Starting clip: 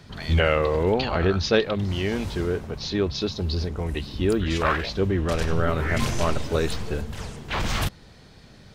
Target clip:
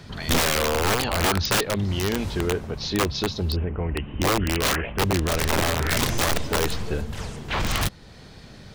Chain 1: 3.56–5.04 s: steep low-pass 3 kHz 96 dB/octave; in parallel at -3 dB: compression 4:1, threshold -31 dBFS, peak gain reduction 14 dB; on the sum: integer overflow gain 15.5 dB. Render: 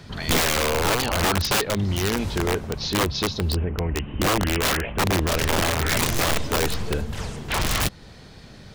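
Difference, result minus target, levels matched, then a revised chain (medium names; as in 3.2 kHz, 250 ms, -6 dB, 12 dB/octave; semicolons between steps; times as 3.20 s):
compression: peak gain reduction -7 dB
3.56–5.04 s: steep low-pass 3 kHz 96 dB/octave; in parallel at -3 dB: compression 4:1, threshold -40.5 dBFS, peak gain reduction 21 dB; on the sum: integer overflow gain 15.5 dB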